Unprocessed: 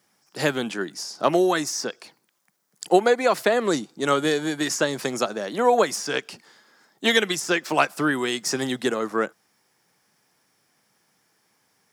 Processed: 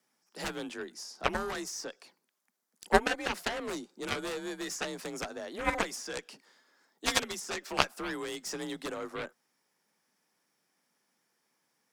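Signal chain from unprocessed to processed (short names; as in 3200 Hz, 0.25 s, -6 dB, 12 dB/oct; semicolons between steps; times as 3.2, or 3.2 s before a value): frequency shift +38 Hz; added harmonics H 3 -9 dB, 7 -29 dB, 8 -44 dB, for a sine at -4 dBFS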